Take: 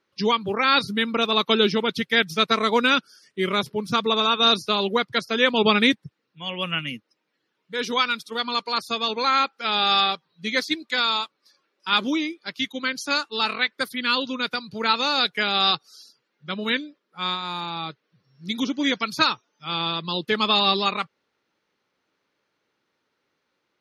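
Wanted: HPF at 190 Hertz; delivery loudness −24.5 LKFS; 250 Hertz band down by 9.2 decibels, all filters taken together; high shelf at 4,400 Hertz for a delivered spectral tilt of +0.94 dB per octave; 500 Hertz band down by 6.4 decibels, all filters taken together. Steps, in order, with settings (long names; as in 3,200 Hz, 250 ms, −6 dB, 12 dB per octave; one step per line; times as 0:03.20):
high-pass filter 190 Hz
parametric band 250 Hz −8 dB
parametric band 500 Hz −5 dB
high-shelf EQ 4,400 Hz −7.5 dB
level +1 dB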